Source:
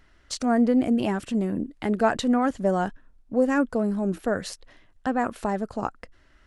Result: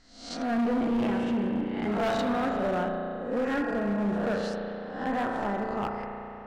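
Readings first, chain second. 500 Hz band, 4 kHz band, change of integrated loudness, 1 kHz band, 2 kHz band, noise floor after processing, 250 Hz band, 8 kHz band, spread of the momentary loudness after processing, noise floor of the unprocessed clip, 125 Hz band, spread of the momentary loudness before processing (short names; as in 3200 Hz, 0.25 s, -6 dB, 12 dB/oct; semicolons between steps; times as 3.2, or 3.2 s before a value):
-3.0 dB, -3.0 dB, -4.0 dB, -2.5 dB, -1.5 dB, -43 dBFS, -4.0 dB, under -10 dB, 7 LU, -59 dBFS, -3.5 dB, 11 LU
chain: spectral swells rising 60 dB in 0.63 s; LPF 4200 Hz 12 dB/oct; spring tank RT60 3.1 s, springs 34 ms, chirp 75 ms, DRR 1.5 dB; hard clip -18 dBFS, distortion -11 dB; gain -5.5 dB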